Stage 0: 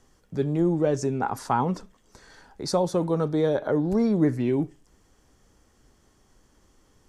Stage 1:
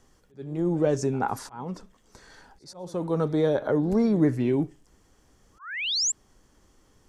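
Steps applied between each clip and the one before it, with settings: painted sound rise, 5.59–6.12 s, 990–7800 Hz -24 dBFS; slow attack 471 ms; pre-echo 82 ms -21.5 dB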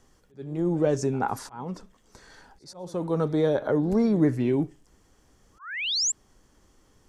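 no audible change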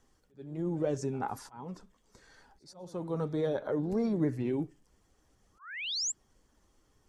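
coarse spectral quantiser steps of 15 dB; trim -7.5 dB

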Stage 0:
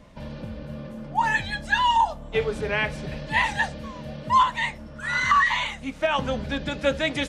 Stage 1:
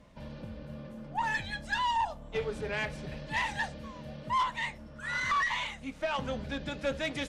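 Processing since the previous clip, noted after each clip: valve stage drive 17 dB, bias 0.3; trim -6.5 dB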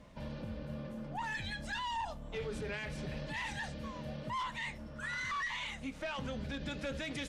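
dynamic bell 760 Hz, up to -5 dB, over -44 dBFS, Q 0.88; peak limiter -32.5 dBFS, peak gain reduction 9.5 dB; trim +1 dB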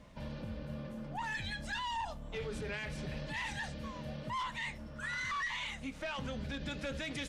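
peaking EQ 430 Hz -2 dB 2.7 oct; trim +1 dB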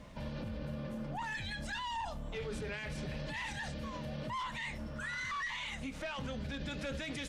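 peak limiter -37 dBFS, peak gain reduction 6.5 dB; trim +4.5 dB

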